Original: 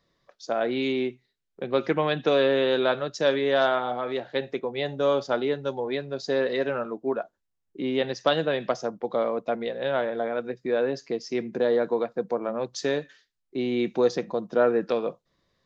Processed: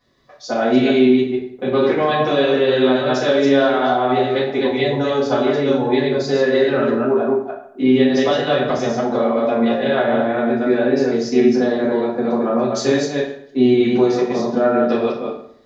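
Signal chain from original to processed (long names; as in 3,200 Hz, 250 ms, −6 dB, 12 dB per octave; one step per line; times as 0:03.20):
delay that plays each chunk backwards 150 ms, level −3 dB
downward compressor, threshold −23 dBFS, peak gain reduction 8 dB
convolution reverb RT60 0.65 s, pre-delay 4 ms, DRR −9.5 dB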